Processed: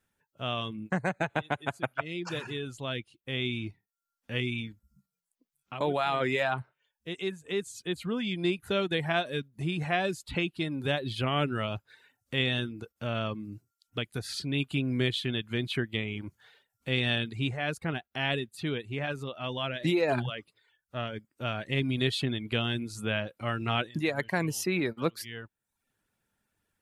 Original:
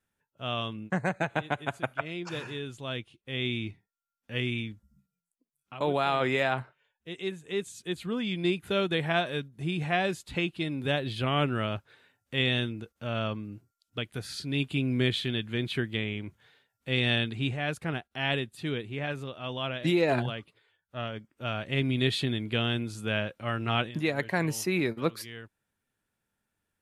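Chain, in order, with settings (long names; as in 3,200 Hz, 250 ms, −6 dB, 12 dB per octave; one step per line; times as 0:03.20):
reverb reduction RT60 0.52 s
in parallel at +1 dB: downward compressor, threshold −38 dBFS, peak gain reduction 15.5 dB
on the sum: level −2.5 dB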